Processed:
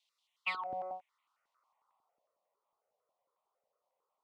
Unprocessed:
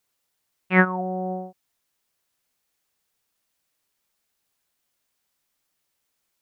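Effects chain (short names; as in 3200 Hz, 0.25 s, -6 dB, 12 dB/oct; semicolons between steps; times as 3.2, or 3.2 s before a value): HPF 89 Hz; band shelf 1400 Hz +9 dB 1.1 oct; compressor 6:1, threshold -20 dBFS, peak gain reduction 14 dB; overdrive pedal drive 15 dB, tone 2200 Hz, clips at -6.5 dBFS; fixed phaser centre 690 Hz, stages 4; time stretch by phase-locked vocoder 0.66×; band-pass sweep 3200 Hz -> 490 Hz, 0.71–2.38; step phaser 11 Hz 350–1600 Hz; gain +8 dB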